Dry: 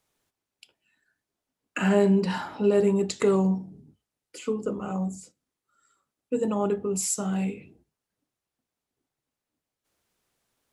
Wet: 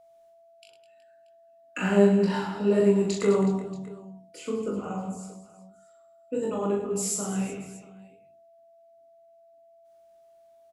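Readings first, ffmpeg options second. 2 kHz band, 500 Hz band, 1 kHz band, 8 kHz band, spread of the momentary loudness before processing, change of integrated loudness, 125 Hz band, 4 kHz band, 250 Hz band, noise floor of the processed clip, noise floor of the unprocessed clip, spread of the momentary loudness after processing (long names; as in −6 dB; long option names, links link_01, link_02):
−0.5 dB, +0.5 dB, −0.5 dB, −1.0 dB, 11 LU, 0.0 dB, −0.5 dB, −1.0 dB, 0.0 dB, −57 dBFS, below −85 dBFS, 19 LU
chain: -af "flanger=delay=20:depth=5.5:speed=1.7,aecho=1:1:40|104|206.4|370.2|632.4:0.631|0.398|0.251|0.158|0.1,aeval=exprs='val(0)+0.002*sin(2*PI*670*n/s)':channel_layout=same"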